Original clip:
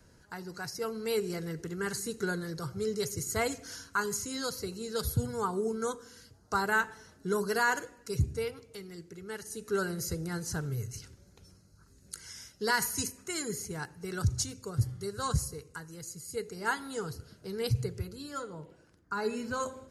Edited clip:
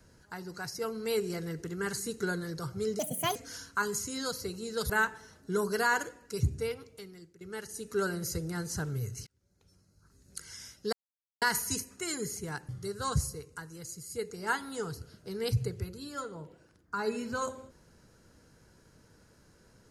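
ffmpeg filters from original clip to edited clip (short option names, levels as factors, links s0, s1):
-filter_complex "[0:a]asplit=8[s0][s1][s2][s3][s4][s5][s6][s7];[s0]atrim=end=2.994[s8];[s1]atrim=start=2.99:end=3.54,asetpts=PTS-STARTPTS,asetrate=66150,aresample=44100[s9];[s2]atrim=start=3.536:end=5.082[s10];[s3]atrim=start=6.658:end=9.17,asetpts=PTS-STARTPTS,afade=t=out:st=1.982:d=0.53:silence=0.211349[s11];[s4]atrim=start=9.17:end=11.03,asetpts=PTS-STARTPTS,afade=t=in:d=0.004:c=hsin:silence=0.211349,afade=t=out:st=1.856:d=0.004:c=hsin[s12];[s5]atrim=start=11.03:end=12.69,asetpts=PTS-STARTPTS,afade=t=in:d=1.14,afade=t=out:st=1.656:d=0.004:c=hsin,apad=pad_dur=0.49[s13];[s6]atrim=start=12.69:end=13.962,asetpts=PTS-STARTPTS,afade=t=in:d=0.004:c=hsin[s14];[s7]atrim=start=14.868[s15];[s8][s9]acrossfade=d=0.004:c1=hsin:c2=hsin[s16];[s16][s10]acrossfade=d=0.004:c1=hsin:c2=hsin[s17];[s11][s12][s13][s14]concat=n=4:v=0:a=1[s18];[s17][s18]acrossfade=d=0.004:c1=hsin:c2=hsin[s19];[s19][s15]acrossfade=d=0.004:c1=hsin:c2=hsin"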